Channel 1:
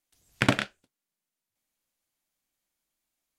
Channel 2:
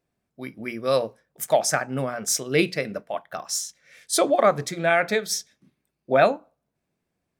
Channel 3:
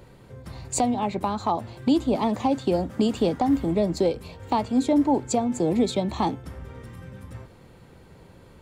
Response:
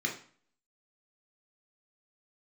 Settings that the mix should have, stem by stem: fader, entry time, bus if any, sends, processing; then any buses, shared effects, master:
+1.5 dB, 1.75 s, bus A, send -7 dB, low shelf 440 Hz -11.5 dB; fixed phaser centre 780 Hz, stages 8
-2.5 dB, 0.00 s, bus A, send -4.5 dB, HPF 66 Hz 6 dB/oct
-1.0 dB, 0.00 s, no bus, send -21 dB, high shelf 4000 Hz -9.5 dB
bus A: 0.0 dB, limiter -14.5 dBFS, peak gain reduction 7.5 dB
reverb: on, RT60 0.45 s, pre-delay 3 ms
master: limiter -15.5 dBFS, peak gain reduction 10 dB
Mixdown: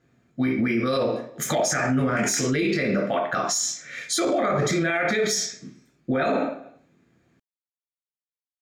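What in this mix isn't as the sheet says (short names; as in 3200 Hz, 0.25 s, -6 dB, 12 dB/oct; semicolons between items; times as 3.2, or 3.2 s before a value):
stem 2 -2.5 dB -> +6.5 dB; stem 3: muted; reverb return +7.0 dB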